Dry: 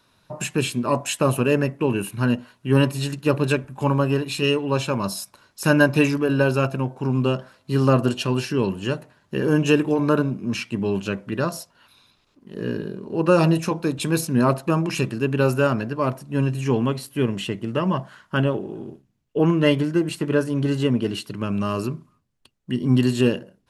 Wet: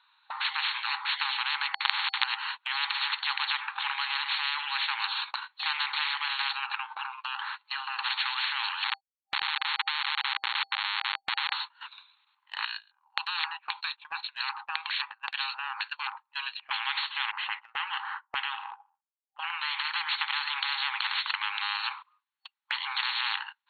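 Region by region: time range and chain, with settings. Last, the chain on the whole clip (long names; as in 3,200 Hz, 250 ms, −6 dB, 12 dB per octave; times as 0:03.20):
0:01.74–0:02.24: high-frequency loss of the air 390 metres + log-companded quantiser 2 bits
0:06.52–0:07.99: downward compressor 10 to 1, threshold −30 dBFS + high-shelf EQ 4,400 Hz −6 dB
0:08.84–0:11.53: downward compressor 12 to 1, threshold −26 dBFS + comparator with hysteresis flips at −28 dBFS
0:12.65–0:16.71: auto-filter band-pass square 1.9 Hz 450–4,700 Hz + high-frequency loss of the air 71 metres
0:17.31–0:19.85: low-pass that shuts in the quiet parts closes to 300 Hz, open at −16 dBFS + notch filter 3,400 Hz, Q 15 + downward compressor 5 to 1, threshold −26 dBFS
whole clip: brick-wall band-pass 790–4,400 Hz; noise gate −53 dBFS, range −23 dB; every bin compressed towards the loudest bin 10 to 1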